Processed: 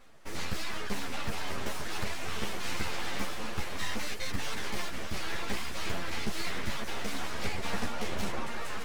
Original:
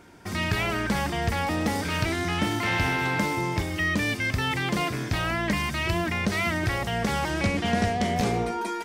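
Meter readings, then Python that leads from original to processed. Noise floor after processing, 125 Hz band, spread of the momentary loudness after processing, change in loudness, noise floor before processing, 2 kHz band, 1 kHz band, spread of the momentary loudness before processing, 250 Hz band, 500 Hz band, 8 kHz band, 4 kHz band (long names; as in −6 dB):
−33 dBFS, −14.0 dB, 2 LU, −10.0 dB, −32 dBFS, −10.5 dB, −10.5 dB, 3 LU, −13.0 dB, −10.5 dB, −3.5 dB, −5.5 dB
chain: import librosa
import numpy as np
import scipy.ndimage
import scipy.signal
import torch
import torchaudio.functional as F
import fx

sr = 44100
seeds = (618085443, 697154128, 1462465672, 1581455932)

y = np.minimum(x, 2.0 * 10.0 ** (-24.0 / 20.0) - x)
y = fx.echo_diffused(y, sr, ms=621, feedback_pct=46, wet_db=-7.0)
y = fx.dereverb_blind(y, sr, rt60_s=0.6)
y = np.abs(y)
y = fx.ensemble(y, sr)
y = y * 10.0 ** (-1.5 / 20.0)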